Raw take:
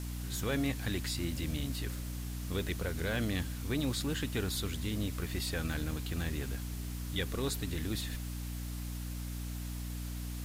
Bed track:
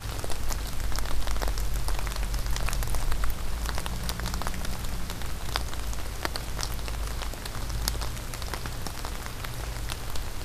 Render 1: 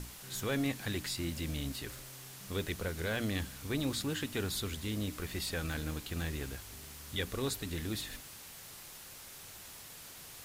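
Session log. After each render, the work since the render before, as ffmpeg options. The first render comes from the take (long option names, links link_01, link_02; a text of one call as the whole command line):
ffmpeg -i in.wav -af "bandreject=frequency=60:width_type=h:width=6,bandreject=frequency=120:width_type=h:width=6,bandreject=frequency=180:width_type=h:width=6,bandreject=frequency=240:width_type=h:width=6,bandreject=frequency=300:width_type=h:width=6" out.wav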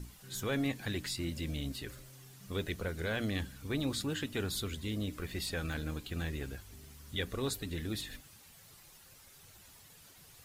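ffmpeg -i in.wav -af "afftdn=noise_reduction=10:noise_floor=-50" out.wav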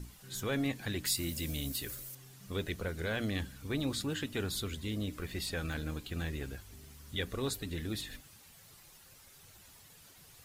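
ffmpeg -i in.wav -filter_complex "[0:a]asettb=1/sr,asplit=3[link_01][link_02][link_03];[link_01]atrim=end=1.054[link_04];[link_02]atrim=start=1.05:end=2.15,asetpts=PTS-STARTPTS,afade=type=in:duration=0.004:curve=qsin,afade=type=out:start_time=1.096:duration=0.004:curve=qsin,aemphasis=mode=production:type=50fm[link_05];[link_03]atrim=start=2.146[link_06];[link_04][link_05]acrossfade=duration=0.004:curve1=hsin:curve2=qsin[link_07];[link_07][link_06]acrossfade=duration=0.004:curve1=qsin:curve2=hsin" out.wav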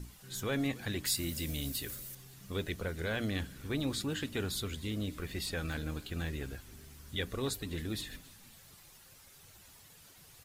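ffmpeg -i in.wav -filter_complex "[0:a]asplit=5[link_01][link_02][link_03][link_04][link_05];[link_02]adelay=272,afreqshift=-47,volume=-22dB[link_06];[link_03]adelay=544,afreqshift=-94,volume=-26.6dB[link_07];[link_04]adelay=816,afreqshift=-141,volume=-31.2dB[link_08];[link_05]adelay=1088,afreqshift=-188,volume=-35.7dB[link_09];[link_01][link_06][link_07][link_08][link_09]amix=inputs=5:normalize=0" out.wav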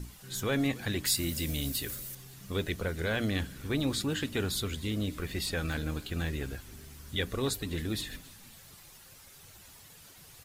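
ffmpeg -i in.wav -af "volume=4dB" out.wav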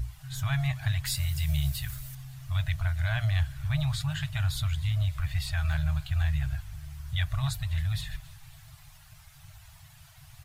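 ffmpeg -i in.wav -af "bass=frequency=250:gain=10,treble=frequency=4000:gain=-5,afftfilt=real='re*(1-between(b*sr/4096,160,600))':imag='im*(1-between(b*sr/4096,160,600))':win_size=4096:overlap=0.75" out.wav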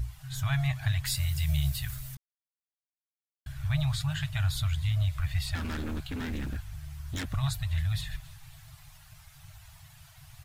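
ffmpeg -i in.wav -filter_complex "[0:a]asettb=1/sr,asplit=3[link_01][link_02][link_03];[link_01]atrim=end=5.554[link_04];[link_02]atrim=start=5.55:end=7.34,asetpts=PTS-STARTPTS,afade=type=in:duration=0.004:curve=qsin,afade=type=out:start_time=1.786:duration=0.004:curve=qsin,aeval=exprs='0.0376*(abs(mod(val(0)/0.0376+3,4)-2)-1)':channel_layout=same[link_05];[link_03]atrim=start=7.336[link_06];[link_04][link_05]acrossfade=duration=0.004:curve1=hsin:curve2=qsin[link_07];[link_07][link_06]acrossfade=duration=0.004:curve1=qsin:curve2=hsin,asplit=3[link_08][link_09][link_10];[link_08]atrim=end=2.17,asetpts=PTS-STARTPTS,afade=type=out:start_time=2.166:duration=0.004:curve=hsin[link_11];[link_09]atrim=start=2.17:end=3.46,asetpts=PTS-STARTPTS,volume=0[link_12];[link_10]atrim=start=3.46,asetpts=PTS-STARTPTS,afade=type=in:duration=0.004:curve=hsin[link_13];[link_11][link_12][link_13]concat=n=3:v=0:a=1" out.wav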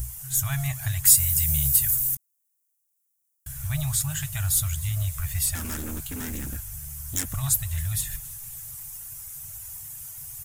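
ffmpeg -i in.wav -af "aexciter=amount=6.7:drive=8.3:freq=6100,acrusher=bits=7:mode=log:mix=0:aa=0.000001" out.wav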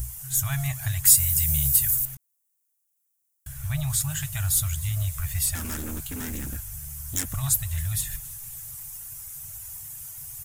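ffmpeg -i in.wav -filter_complex "[0:a]asettb=1/sr,asplit=3[link_01][link_02][link_03];[link_01]atrim=end=2.054[link_04];[link_02]atrim=start=2.05:end=3.9,asetpts=PTS-STARTPTS,afade=type=in:duration=0.004:curve=qsin,afade=type=out:start_time=1.846:duration=0.004:curve=qsin,acrossover=split=4000[link_05][link_06];[link_06]acompressor=threshold=-38dB:ratio=4:attack=1:release=60[link_07];[link_05][link_07]amix=inputs=2:normalize=0[link_08];[link_03]atrim=start=3.896[link_09];[link_04][link_08]acrossfade=duration=0.004:curve1=hsin:curve2=qsin[link_10];[link_10][link_09]acrossfade=duration=0.004:curve1=qsin:curve2=hsin" out.wav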